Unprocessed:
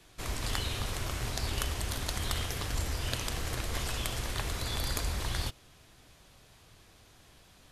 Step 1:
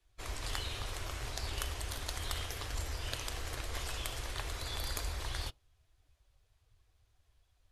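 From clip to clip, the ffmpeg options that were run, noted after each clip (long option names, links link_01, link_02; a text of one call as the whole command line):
ffmpeg -i in.wav -af "equalizer=frequency=180:width=1.5:gain=-13.5,afftdn=noise_reduction=16:noise_floor=-51,volume=-4dB" out.wav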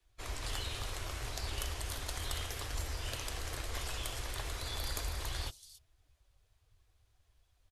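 ffmpeg -i in.wav -filter_complex "[0:a]acrossover=split=220|860|4700[link_01][link_02][link_03][link_04];[link_03]asoftclip=type=hard:threshold=-38.5dB[link_05];[link_04]aecho=1:1:282:0.531[link_06];[link_01][link_02][link_05][link_06]amix=inputs=4:normalize=0" out.wav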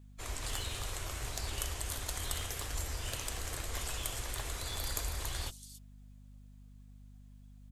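ffmpeg -i in.wav -af "aexciter=amount=2.5:drive=1.5:freq=6800,aeval=exprs='val(0)+0.00224*(sin(2*PI*50*n/s)+sin(2*PI*2*50*n/s)/2+sin(2*PI*3*50*n/s)/3+sin(2*PI*4*50*n/s)/4+sin(2*PI*5*50*n/s)/5)':channel_layout=same" out.wav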